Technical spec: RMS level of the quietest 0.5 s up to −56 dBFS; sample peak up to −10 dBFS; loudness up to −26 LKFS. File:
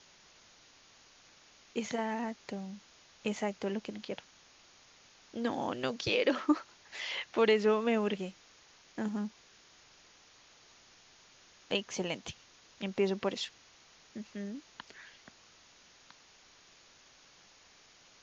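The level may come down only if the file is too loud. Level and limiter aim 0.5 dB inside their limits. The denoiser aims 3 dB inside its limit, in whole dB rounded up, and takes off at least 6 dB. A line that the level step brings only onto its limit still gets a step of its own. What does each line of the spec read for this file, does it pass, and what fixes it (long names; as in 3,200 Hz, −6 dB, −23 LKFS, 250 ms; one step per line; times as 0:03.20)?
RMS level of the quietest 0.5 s −61 dBFS: in spec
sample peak −14.5 dBFS: in spec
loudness −34.5 LKFS: in spec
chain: no processing needed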